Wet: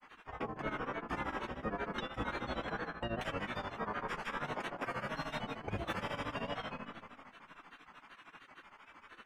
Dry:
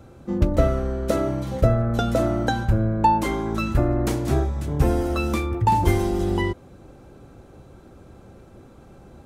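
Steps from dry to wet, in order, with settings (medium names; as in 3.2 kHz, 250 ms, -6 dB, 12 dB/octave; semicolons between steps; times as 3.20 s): Savitzky-Golay filter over 25 samples; resonant low shelf 430 Hz -8 dB, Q 1.5; spectral gate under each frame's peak -15 dB weak; algorithmic reverb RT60 1.8 s, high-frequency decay 0.8×, pre-delay 115 ms, DRR 6 dB; granulator, grains 13 per s, spray 31 ms, pitch spread up and down by 3 st; reverse; compression 6:1, threshold -47 dBFS, peak gain reduction 17 dB; reverse; trim +11 dB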